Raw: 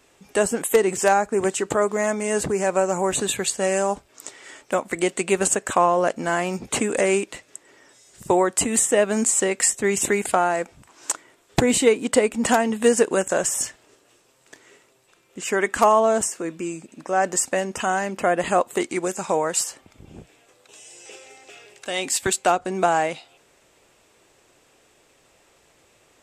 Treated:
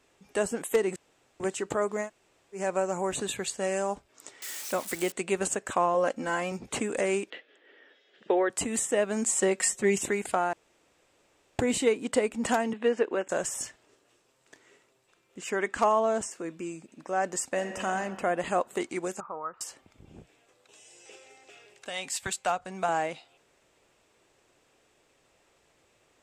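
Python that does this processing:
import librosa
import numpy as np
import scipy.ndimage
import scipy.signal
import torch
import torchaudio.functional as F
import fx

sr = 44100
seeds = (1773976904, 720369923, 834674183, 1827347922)

y = fx.crossing_spikes(x, sr, level_db=-19.5, at=(4.42, 5.12))
y = fx.comb(y, sr, ms=3.8, depth=0.63, at=(5.94, 6.52))
y = fx.cabinet(y, sr, low_hz=250.0, low_slope=24, high_hz=3700.0, hz=(470.0, 1000.0, 1700.0, 3200.0), db=(7, -7, 8, 10), at=(7.3, 8.5))
y = fx.comb(y, sr, ms=5.4, depth=0.94, at=(9.25, 9.98))
y = fx.cheby1_bandpass(y, sr, low_hz=290.0, high_hz=2800.0, order=2, at=(12.73, 13.29))
y = fx.lowpass(y, sr, hz=8300.0, slope=12, at=(15.5, 16.31))
y = fx.reverb_throw(y, sr, start_s=17.48, length_s=0.4, rt60_s=2.1, drr_db=5.0)
y = fx.ladder_lowpass(y, sr, hz=1300.0, resonance_pct=85, at=(19.2, 19.61))
y = fx.peak_eq(y, sr, hz=330.0, db=-13.0, octaves=0.77, at=(21.89, 22.89))
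y = fx.edit(y, sr, fx.room_tone_fill(start_s=0.96, length_s=0.44),
    fx.room_tone_fill(start_s=2.05, length_s=0.52, crossfade_s=0.1),
    fx.room_tone_fill(start_s=10.53, length_s=1.06), tone=tone)
y = fx.high_shelf(y, sr, hz=8900.0, db=-6.5)
y = y * librosa.db_to_amplitude(-7.5)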